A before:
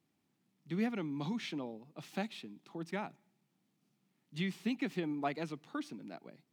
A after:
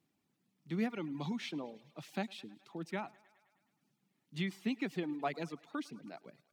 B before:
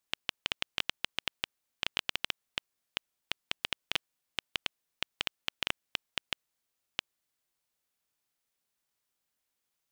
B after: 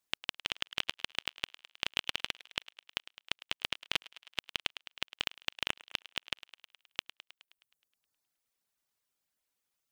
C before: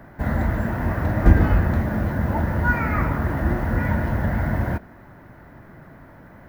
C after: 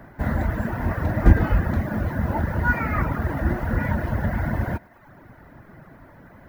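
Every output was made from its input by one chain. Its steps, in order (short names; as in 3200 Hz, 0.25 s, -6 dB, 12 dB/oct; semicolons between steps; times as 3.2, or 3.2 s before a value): on a send: thinning echo 0.105 s, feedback 62%, high-pass 300 Hz, level -12 dB; on the sum: reverb removal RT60 0.71 s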